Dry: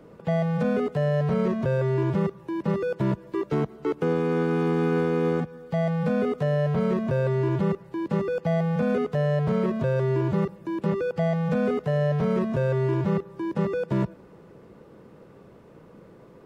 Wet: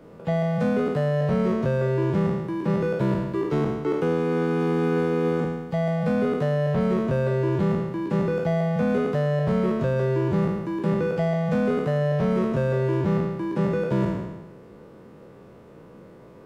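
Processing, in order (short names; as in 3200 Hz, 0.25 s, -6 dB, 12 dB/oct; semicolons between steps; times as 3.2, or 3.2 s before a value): spectral trails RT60 1.18 s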